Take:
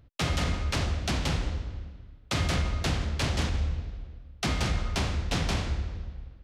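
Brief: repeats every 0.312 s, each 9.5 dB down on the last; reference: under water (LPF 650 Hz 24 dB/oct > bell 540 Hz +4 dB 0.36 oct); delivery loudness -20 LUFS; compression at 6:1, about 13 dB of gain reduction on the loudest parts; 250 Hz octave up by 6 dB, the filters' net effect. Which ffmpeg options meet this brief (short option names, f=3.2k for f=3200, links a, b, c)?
-af "equalizer=f=250:t=o:g=8,acompressor=threshold=-36dB:ratio=6,lowpass=f=650:w=0.5412,lowpass=f=650:w=1.3066,equalizer=f=540:t=o:w=0.36:g=4,aecho=1:1:312|624|936|1248:0.335|0.111|0.0365|0.012,volume=21dB"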